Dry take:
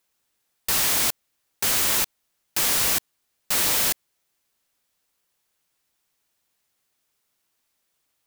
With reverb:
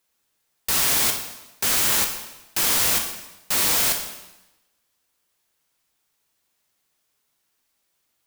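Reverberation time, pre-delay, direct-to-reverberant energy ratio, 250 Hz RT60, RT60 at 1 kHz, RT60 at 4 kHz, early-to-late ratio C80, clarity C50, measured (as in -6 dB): 1.0 s, 5 ms, 3.5 dB, 1.0 s, 1.0 s, 0.95 s, 8.5 dB, 6.5 dB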